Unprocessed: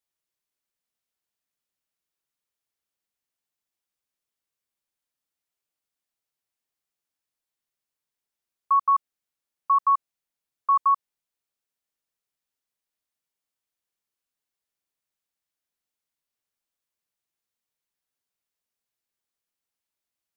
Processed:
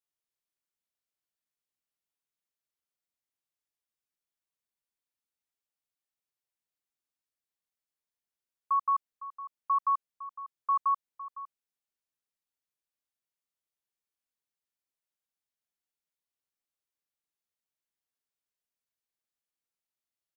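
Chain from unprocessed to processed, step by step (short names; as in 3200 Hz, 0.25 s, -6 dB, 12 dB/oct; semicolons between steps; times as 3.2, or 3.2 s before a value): outdoor echo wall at 87 m, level -14 dB; gain -7 dB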